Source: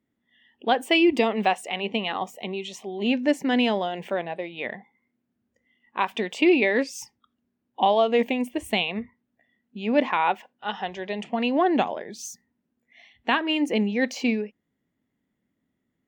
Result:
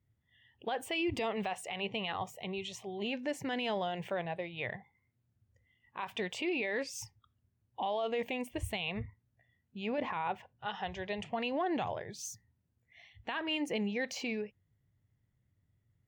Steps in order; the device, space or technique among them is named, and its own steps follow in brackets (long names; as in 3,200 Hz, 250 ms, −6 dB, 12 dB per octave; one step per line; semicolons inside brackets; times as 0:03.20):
car stereo with a boomy subwoofer (low shelf with overshoot 160 Hz +13.5 dB, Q 3; brickwall limiter −20.5 dBFS, peak gain reduction 12 dB)
0:09.98–0:10.66: spectral tilt −2 dB per octave
level −5.5 dB